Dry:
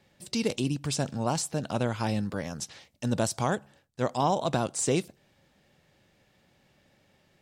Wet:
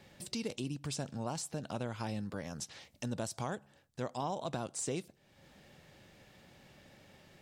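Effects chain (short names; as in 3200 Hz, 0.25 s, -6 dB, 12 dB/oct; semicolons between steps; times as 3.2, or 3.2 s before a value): compressor 2:1, threshold -54 dBFS, peak gain reduction 17.5 dB; gain +5.5 dB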